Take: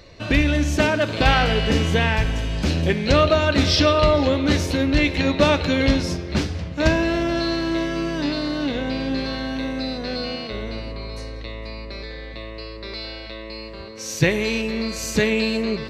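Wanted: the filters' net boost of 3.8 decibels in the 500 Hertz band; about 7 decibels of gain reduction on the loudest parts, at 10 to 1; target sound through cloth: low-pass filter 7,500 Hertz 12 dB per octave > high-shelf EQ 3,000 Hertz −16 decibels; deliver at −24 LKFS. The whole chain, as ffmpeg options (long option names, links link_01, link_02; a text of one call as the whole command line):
ffmpeg -i in.wav -af "equalizer=frequency=500:width_type=o:gain=5.5,acompressor=threshold=-16dB:ratio=10,lowpass=7500,highshelf=frequency=3000:gain=-16" out.wav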